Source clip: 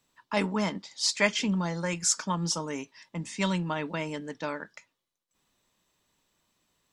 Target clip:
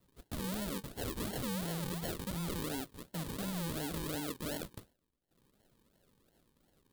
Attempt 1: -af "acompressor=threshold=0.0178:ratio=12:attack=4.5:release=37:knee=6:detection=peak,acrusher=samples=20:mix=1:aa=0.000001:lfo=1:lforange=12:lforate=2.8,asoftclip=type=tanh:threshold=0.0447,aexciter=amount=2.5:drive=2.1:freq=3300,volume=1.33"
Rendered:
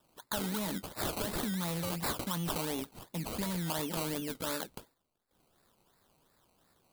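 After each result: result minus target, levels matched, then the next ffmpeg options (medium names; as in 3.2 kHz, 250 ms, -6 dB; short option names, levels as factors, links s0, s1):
saturation: distortion -11 dB; decimation with a swept rate: distortion -7 dB
-af "acompressor=threshold=0.0178:ratio=12:attack=4.5:release=37:knee=6:detection=peak,acrusher=samples=20:mix=1:aa=0.000001:lfo=1:lforange=12:lforate=2.8,asoftclip=type=tanh:threshold=0.015,aexciter=amount=2.5:drive=2.1:freq=3300,volume=1.33"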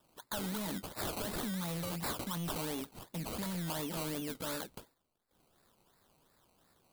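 decimation with a swept rate: distortion -7 dB
-af "acompressor=threshold=0.0178:ratio=12:attack=4.5:release=37:knee=6:detection=peak,acrusher=samples=51:mix=1:aa=0.000001:lfo=1:lforange=30.6:lforate=2.8,asoftclip=type=tanh:threshold=0.015,aexciter=amount=2.5:drive=2.1:freq=3300,volume=1.33"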